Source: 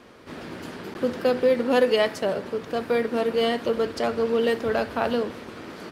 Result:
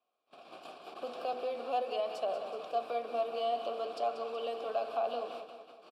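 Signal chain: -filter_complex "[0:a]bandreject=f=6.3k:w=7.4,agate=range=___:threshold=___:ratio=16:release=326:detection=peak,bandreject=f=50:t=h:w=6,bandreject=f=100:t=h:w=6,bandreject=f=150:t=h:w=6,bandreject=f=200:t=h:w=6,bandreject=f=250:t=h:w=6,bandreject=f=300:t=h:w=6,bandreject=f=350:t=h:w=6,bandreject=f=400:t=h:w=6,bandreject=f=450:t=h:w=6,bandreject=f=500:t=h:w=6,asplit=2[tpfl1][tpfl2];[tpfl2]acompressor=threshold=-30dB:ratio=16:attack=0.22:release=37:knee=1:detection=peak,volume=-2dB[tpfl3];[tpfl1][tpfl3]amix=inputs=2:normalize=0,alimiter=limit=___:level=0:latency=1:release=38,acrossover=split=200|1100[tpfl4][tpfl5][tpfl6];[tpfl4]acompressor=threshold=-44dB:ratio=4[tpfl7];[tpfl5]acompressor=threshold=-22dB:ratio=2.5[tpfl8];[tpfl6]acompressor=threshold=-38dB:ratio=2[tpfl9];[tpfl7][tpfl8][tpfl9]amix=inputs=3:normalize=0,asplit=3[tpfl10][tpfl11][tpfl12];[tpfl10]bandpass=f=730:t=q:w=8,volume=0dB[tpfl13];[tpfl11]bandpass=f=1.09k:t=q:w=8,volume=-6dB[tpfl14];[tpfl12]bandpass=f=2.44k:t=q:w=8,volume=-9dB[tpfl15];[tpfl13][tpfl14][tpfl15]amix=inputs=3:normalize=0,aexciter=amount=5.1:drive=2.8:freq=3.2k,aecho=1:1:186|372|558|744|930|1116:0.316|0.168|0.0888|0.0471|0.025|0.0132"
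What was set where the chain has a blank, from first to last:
-28dB, -35dB, -13dB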